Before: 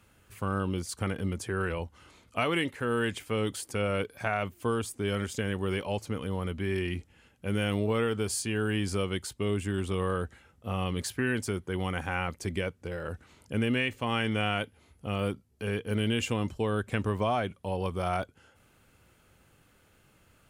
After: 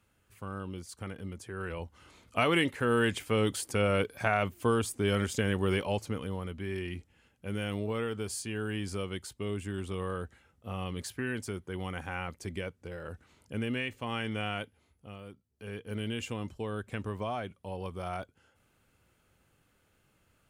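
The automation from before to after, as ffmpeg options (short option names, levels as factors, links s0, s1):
-af "volume=4.47,afade=t=in:st=1.53:d=0.99:silence=0.281838,afade=t=out:st=5.73:d=0.74:silence=0.421697,afade=t=out:st=14.59:d=0.65:silence=0.237137,afade=t=in:st=15.24:d=0.73:silence=0.281838"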